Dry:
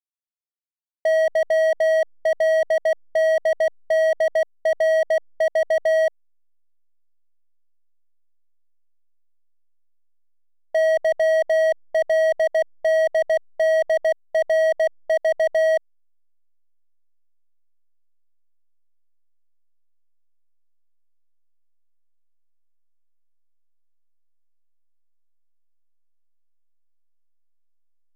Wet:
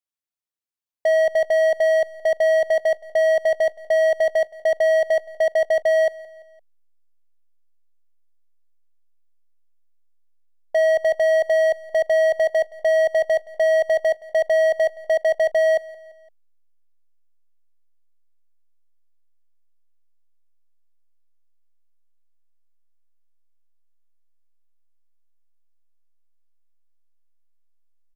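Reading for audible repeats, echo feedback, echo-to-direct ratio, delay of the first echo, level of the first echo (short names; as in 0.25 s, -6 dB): 3, 47%, -19.5 dB, 0.171 s, -20.5 dB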